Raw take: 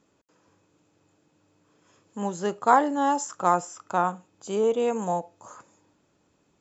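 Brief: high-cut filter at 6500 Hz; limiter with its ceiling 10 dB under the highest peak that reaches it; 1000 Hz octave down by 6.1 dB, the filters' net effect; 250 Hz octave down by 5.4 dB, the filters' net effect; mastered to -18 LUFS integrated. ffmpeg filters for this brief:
-af "lowpass=6.5k,equalizer=f=250:t=o:g=-6.5,equalizer=f=1k:t=o:g=-7.5,volume=14dB,alimiter=limit=-5dB:level=0:latency=1"

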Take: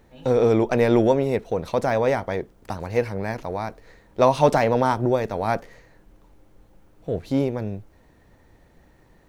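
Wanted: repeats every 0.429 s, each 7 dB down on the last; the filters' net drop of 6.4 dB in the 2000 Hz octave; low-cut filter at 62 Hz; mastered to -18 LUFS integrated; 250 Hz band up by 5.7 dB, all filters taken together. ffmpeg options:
-af "highpass=62,equalizer=f=250:t=o:g=7,equalizer=f=2k:t=o:g=-8.5,aecho=1:1:429|858|1287|1716|2145:0.447|0.201|0.0905|0.0407|0.0183,volume=2dB"

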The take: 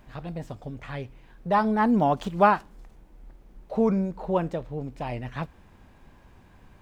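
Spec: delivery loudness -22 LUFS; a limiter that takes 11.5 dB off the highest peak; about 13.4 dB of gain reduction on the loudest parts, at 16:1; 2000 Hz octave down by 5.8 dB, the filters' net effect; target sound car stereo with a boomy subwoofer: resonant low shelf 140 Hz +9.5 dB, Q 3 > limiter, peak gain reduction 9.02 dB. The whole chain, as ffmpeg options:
-af "equalizer=f=2k:t=o:g=-8.5,acompressor=threshold=-27dB:ratio=16,alimiter=level_in=6.5dB:limit=-24dB:level=0:latency=1,volume=-6.5dB,lowshelf=f=140:t=q:w=3:g=9.5,volume=19dB,alimiter=limit=-11dB:level=0:latency=1"

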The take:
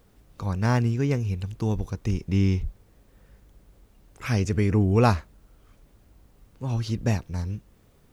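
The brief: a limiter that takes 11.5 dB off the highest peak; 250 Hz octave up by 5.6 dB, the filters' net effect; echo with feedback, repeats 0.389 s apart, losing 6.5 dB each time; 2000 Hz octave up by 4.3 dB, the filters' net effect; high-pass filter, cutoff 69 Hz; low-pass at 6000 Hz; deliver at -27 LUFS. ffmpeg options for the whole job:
-af "highpass=69,lowpass=6k,equalizer=f=250:t=o:g=7,equalizer=f=2k:t=o:g=5.5,alimiter=limit=-15dB:level=0:latency=1,aecho=1:1:389|778|1167|1556|1945|2334:0.473|0.222|0.105|0.0491|0.0231|0.0109"

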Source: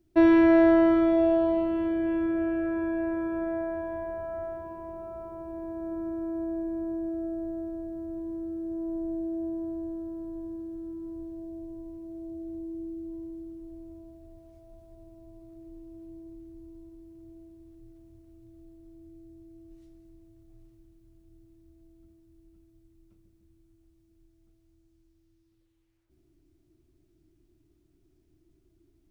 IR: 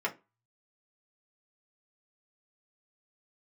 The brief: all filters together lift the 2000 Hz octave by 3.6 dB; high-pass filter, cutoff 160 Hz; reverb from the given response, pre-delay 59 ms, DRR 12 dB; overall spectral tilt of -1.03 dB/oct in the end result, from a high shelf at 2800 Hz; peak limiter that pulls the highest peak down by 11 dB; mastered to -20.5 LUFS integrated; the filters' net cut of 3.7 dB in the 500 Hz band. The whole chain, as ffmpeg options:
-filter_complex "[0:a]highpass=160,equalizer=f=500:t=o:g=-7,equalizer=f=2k:t=o:g=7,highshelf=f=2.8k:g=-6,alimiter=limit=-23.5dB:level=0:latency=1,asplit=2[a][b];[1:a]atrim=start_sample=2205,adelay=59[c];[b][c]afir=irnorm=-1:irlink=0,volume=-19dB[d];[a][d]amix=inputs=2:normalize=0,volume=14.5dB"

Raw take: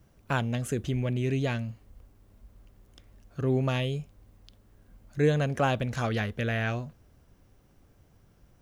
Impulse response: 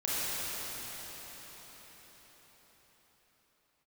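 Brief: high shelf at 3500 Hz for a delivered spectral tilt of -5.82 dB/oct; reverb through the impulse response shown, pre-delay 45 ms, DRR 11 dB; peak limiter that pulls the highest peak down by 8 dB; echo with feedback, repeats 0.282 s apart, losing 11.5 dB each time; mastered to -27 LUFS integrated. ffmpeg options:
-filter_complex "[0:a]highshelf=f=3.5k:g=3,alimiter=limit=-21dB:level=0:latency=1,aecho=1:1:282|564|846:0.266|0.0718|0.0194,asplit=2[a][b];[1:a]atrim=start_sample=2205,adelay=45[c];[b][c]afir=irnorm=-1:irlink=0,volume=-21dB[d];[a][d]amix=inputs=2:normalize=0,volume=4.5dB"

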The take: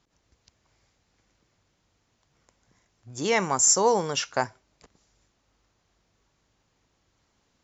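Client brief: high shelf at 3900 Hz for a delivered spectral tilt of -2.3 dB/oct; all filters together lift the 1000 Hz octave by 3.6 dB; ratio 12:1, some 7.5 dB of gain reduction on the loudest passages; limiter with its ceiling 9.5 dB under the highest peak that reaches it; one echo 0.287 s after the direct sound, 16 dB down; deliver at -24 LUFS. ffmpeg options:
-af "equalizer=f=1k:t=o:g=4,highshelf=f=3.9k:g=5,acompressor=threshold=-19dB:ratio=12,alimiter=limit=-18.5dB:level=0:latency=1,aecho=1:1:287:0.158,volume=5dB"

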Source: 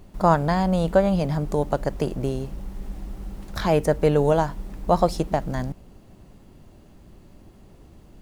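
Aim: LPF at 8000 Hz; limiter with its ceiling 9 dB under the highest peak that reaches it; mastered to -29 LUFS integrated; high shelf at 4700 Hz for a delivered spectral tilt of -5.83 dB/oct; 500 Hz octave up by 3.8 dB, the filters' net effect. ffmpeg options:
-af "lowpass=8k,equalizer=f=500:t=o:g=4.5,highshelf=f=4.7k:g=4,volume=-5.5dB,alimiter=limit=-16.5dB:level=0:latency=1"

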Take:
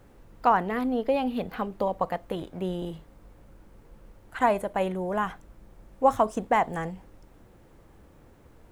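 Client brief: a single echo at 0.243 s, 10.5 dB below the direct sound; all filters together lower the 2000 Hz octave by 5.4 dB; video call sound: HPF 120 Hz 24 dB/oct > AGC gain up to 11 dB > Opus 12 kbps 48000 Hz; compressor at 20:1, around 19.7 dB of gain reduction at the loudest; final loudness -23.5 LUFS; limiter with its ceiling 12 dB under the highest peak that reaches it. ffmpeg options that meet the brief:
-af "equalizer=f=2k:t=o:g=-7,acompressor=threshold=-35dB:ratio=20,alimiter=level_in=10.5dB:limit=-24dB:level=0:latency=1,volume=-10.5dB,highpass=f=120:w=0.5412,highpass=f=120:w=1.3066,aecho=1:1:243:0.299,dynaudnorm=m=11dB,volume=22dB" -ar 48000 -c:a libopus -b:a 12k

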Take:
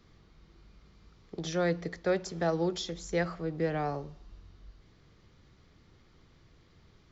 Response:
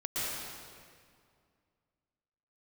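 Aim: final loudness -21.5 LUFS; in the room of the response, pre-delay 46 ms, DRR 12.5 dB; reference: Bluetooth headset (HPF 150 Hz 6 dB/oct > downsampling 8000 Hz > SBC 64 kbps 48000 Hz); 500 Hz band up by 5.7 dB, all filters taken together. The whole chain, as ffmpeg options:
-filter_complex "[0:a]equalizer=f=500:t=o:g=7,asplit=2[a][b];[1:a]atrim=start_sample=2205,adelay=46[c];[b][c]afir=irnorm=-1:irlink=0,volume=-19dB[d];[a][d]amix=inputs=2:normalize=0,highpass=f=150:p=1,aresample=8000,aresample=44100,volume=7dB" -ar 48000 -c:a sbc -b:a 64k

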